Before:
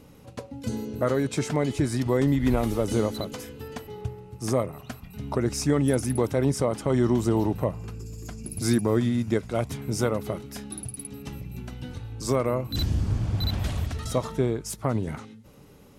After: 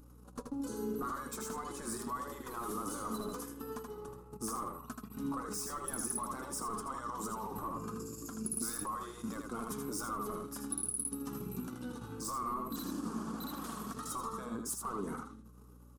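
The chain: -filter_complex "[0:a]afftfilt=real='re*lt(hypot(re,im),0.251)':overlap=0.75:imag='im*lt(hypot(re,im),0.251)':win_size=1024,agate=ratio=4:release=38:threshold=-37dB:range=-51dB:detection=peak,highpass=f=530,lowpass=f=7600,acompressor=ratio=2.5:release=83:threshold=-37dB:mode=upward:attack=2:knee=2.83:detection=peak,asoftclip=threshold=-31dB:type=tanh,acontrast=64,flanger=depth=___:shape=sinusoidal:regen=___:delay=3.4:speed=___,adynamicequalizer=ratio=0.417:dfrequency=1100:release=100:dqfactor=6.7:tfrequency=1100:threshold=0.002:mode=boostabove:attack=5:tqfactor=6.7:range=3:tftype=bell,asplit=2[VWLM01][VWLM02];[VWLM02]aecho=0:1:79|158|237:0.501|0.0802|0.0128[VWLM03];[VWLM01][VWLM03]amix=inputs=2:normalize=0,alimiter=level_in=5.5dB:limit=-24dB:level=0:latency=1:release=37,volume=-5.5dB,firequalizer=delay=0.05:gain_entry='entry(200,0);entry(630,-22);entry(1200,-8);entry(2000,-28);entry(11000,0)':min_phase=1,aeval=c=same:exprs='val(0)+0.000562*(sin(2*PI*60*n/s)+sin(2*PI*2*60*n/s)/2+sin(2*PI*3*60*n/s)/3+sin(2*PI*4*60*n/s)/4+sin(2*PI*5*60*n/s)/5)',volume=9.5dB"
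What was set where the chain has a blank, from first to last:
1.4, 49, 1.7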